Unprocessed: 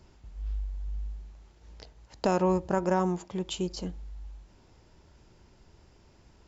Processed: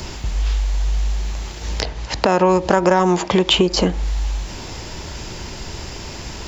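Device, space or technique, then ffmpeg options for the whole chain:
mastering chain: -filter_complex "[0:a]equalizer=f=1400:t=o:w=0.3:g=-3,acrossover=split=280|2500[s0][s1][s2];[s0]acompressor=threshold=0.00631:ratio=4[s3];[s1]acompressor=threshold=0.0224:ratio=4[s4];[s2]acompressor=threshold=0.00141:ratio=4[s5];[s3][s4][s5]amix=inputs=3:normalize=0,acompressor=threshold=0.0112:ratio=2.5,asoftclip=type=tanh:threshold=0.0398,tiltshelf=f=1300:g=-4.5,alimiter=level_in=35.5:limit=0.891:release=50:level=0:latency=1,asettb=1/sr,asplit=3[s6][s7][s8];[s6]atrim=end=1.824[s9];[s7]atrim=start=1.82:end=3.68,asetpts=PTS-STARTPTS,afade=t=in:d=0.004:c=qsin,afade=t=out:st=1.856:d=0.004:c=qsin,lowpass=5700[s10];[s8]atrim=start=3.676[s11];[s9][s10]acrossfade=d=0.004:c1=hsin:c2=qsin[s12];[s12][s11]acrossfade=d=0.004:c1=qsin:c2=hsin,volume=0.891"

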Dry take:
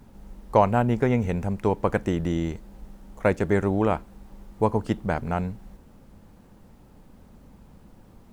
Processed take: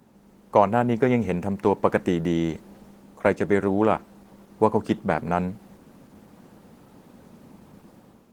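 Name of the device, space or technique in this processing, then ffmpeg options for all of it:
video call: -af "highpass=160,dynaudnorm=f=200:g=5:m=2.51,volume=0.841" -ar 48000 -c:a libopus -b:a 16k

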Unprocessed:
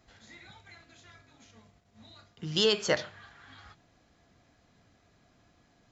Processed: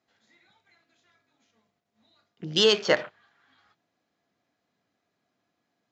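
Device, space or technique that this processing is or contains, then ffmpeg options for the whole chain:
over-cleaned archive recording: -af "highpass=200,lowpass=6700,afwtdn=0.00794,volume=1.88"

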